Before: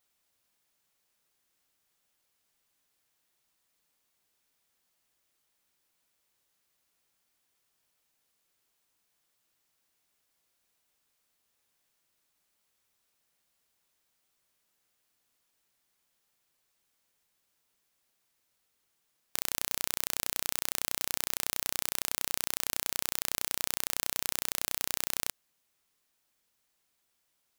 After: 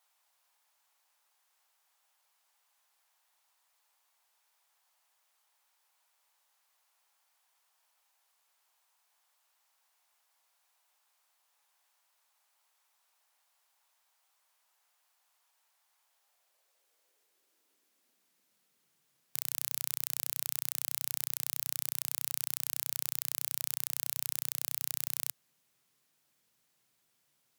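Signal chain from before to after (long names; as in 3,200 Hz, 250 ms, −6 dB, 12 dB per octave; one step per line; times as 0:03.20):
harmonic generator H 2 −12 dB, 4 −7 dB, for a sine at −2.5 dBFS
high-pass filter sweep 840 Hz → 130 Hz, 0:16.01–0:19.14
level +1.5 dB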